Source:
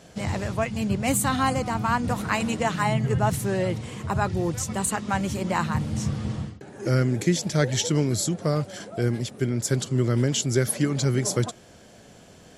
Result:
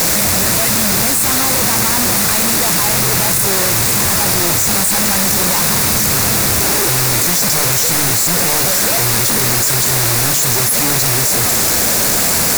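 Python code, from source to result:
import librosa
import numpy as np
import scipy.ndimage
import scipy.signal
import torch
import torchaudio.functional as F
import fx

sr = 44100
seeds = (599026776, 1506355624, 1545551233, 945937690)

p1 = np.sign(x) * np.sqrt(np.mean(np.square(x)))
p2 = fx.high_shelf(p1, sr, hz=4700.0, db=4.0)
p3 = fx.quant_dither(p2, sr, seeds[0], bits=6, dither='triangular')
p4 = fx.fold_sine(p3, sr, drive_db=15, ceiling_db=-18.0)
p5 = p3 + (p4 * 10.0 ** (-4.0 / 20.0))
p6 = fx.peak_eq(p5, sr, hz=3100.0, db=-9.0, octaves=0.37)
p7 = fx.hum_notches(p6, sr, base_hz=50, count=3)
p8 = fx.env_flatten(p7, sr, amount_pct=100)
y = p8 * 10.0 ** (7.0 / 20.0)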